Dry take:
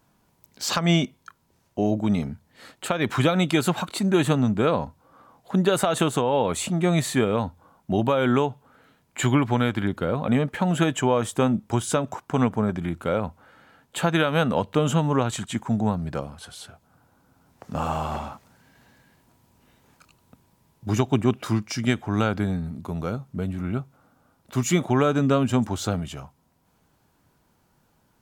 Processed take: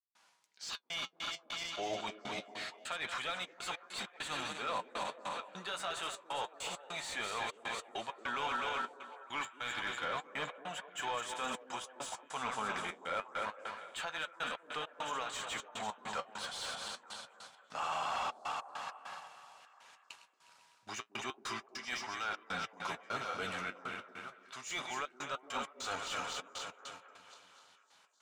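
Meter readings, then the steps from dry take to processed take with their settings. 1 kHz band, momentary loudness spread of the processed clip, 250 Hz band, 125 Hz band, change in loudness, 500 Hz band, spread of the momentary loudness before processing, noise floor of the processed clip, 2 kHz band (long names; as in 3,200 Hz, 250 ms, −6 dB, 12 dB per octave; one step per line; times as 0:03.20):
−9.0 dB, 11 LU, −28.5 dB, −32.5 dB, −15.5 dB, −19.5 dB, 11 LU, −68 dBFS, −7.0 dB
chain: feedback delay that plays each chunk backwards 126 ms, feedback 76%, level −10.5 dB
meter weighting curve ITU-R 468
noise gate −52 dBFS, range −6 dB
parametric band 320 Hz −6.5 dB 1.5 octaves
reversed playback
downward compressor 20 to 1, threshold −36 dBFS, peak gain reduction 24.5 dB
reversed playback
gate pattern ".xxxx.x.x" 100 BPM −60 dB
flanger 0.27 Hz, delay 2.4 ms, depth 9.6 ms, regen −54%
mid-hump overdrive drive 15 dB, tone 1,400 Hz, clips at −28 dBFS
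on a send: echo through a band-pass that steps 226 ms, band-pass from 320 Hz, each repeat 0.7 octaves, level −10.5 dB
on the sum: level +4.5 dB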